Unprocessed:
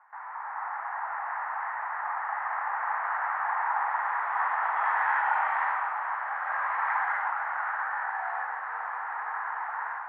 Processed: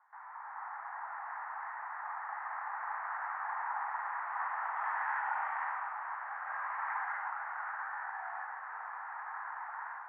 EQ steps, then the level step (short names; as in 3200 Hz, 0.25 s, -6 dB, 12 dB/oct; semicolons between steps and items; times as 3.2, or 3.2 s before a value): three-band isolator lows -18 dB, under 540 Hz, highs -17 dB, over 2700 Hz; -8.0 dB